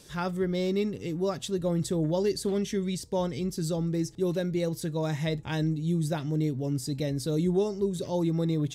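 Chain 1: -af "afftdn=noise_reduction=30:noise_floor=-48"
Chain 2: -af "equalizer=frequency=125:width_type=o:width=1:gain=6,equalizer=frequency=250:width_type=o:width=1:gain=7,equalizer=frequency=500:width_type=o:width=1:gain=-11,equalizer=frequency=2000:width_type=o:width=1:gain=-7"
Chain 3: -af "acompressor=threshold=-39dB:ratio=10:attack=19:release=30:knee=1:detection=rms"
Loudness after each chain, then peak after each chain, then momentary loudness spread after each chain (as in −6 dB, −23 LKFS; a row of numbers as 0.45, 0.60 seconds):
−29.5, −26.5, −39.5 LKFS; −16.5, −14.0, −27.0 dBFS; 4, 5, 1 LU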